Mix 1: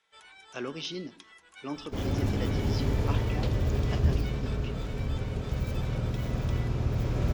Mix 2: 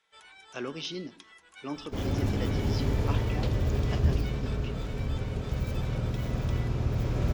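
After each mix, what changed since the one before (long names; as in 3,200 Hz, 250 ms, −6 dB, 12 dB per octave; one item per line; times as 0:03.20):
nothing changed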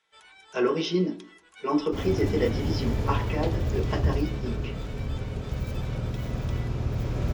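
speech: send on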